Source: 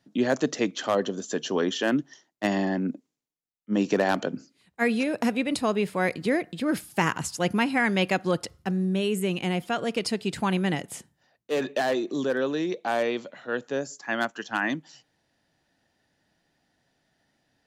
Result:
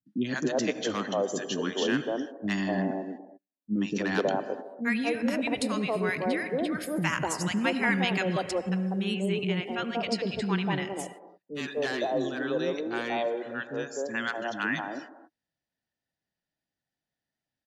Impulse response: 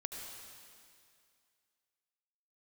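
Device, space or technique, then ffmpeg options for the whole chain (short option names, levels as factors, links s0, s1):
keyed gated reverb: -filter_complex "[0:a]asplit=3[s0][s1][s2];[1:a]atrim=start_sample=2205[s3];[s1][s3]afir=irnorm=-1:irlink=0[s4];[s2]apad=whole_len=778967[s5];[s4][s5]sidechaingate=range=0.0224:threshold=0.00224:ratio=16:detection=peak,volume=0.631[s6];[s0][s6]amix=inputs=2:normalize=0,asettb=1/sr,asplit=3[s7][s8][s9];[s7]atrim=end=9.084[s10];[s8]atrim=start=9.08:end=10.93,asetpts=PTS-STARTPTS,afade=t=in:d=0.004:c=qsin,afade=t=out:st=1.846:d=0.004:c=qsin,lowpass=6100[s11];[s9]atrim=start=10.926[s12];[s10][s11]acrossfade=d=0.004:c1=hsin:c2=qsin[s13];[s13][s12]acrossfade=d=0.004:c1=qsin:c2=hsin,afftdn=nr=14:nf=-45,acrossover=split=330|990[s14][s15][s16];[s16]adelay=60[s17];[s15]adelay=250[s18];[s14][s18][s17]amix=inputs=3:normalize=0,volume=0.631"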